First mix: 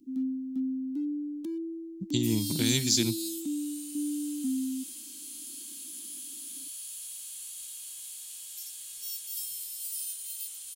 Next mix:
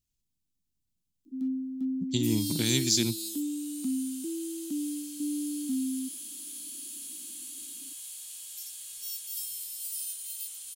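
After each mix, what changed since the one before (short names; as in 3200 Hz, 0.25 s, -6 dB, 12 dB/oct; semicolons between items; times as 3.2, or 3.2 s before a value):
first sound: entry +1.25 s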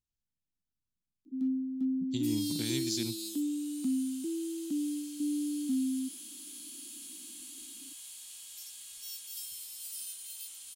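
speech -8.0 dB; master: add high shelf 7100 Hz -8 dB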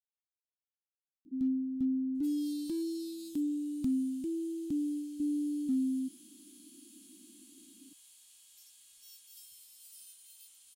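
speech: muted; first sound: remove steep high-pass 200 Hz; second sound -12.0 dB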